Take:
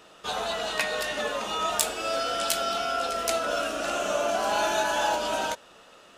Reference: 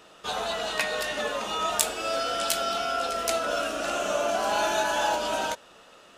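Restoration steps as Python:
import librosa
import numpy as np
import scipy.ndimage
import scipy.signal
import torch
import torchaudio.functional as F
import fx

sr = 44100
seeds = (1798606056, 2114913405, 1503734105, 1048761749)

y = fx.fix_declip(x, sr, threshold_db=-6.5)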